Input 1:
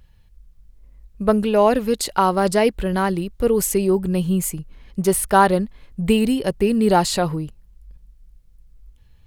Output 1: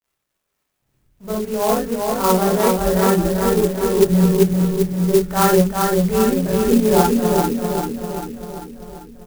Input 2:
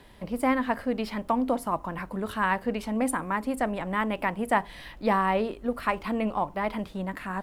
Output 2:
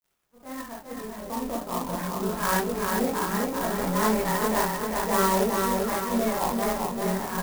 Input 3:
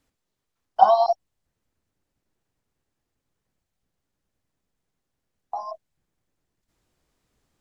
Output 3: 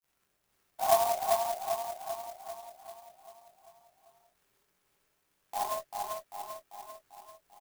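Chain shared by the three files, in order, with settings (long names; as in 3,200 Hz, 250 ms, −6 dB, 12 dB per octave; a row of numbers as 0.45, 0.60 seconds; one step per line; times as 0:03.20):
fade in at the beginning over 2.40 s
low-pass filter 2,300 Hz 24 dB per octave
mains-hum notches 50/100/150/200/250 Hz
in parallel at −2.5 dB: downward compressor, threshold −30 dBFS
on the sum: transient designer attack −10 dB, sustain −6 dB
dead-zone distortion −49.5 dBFS
surface crackle 180 per second −56 dBFS
multi-voice chorus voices 4, 0.3 Hz, delay 22 ms, depth 1.3 ms
on a send: repeating echo 393 ms, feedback 56%, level −3.5 dB
on the sum: reverb whose tail is shaped and stops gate 80 ms rising, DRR −2.5 dB
converter with an unsteady clock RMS 0.068 ms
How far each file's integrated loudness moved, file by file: +2.0, +2.5, −13.0 LU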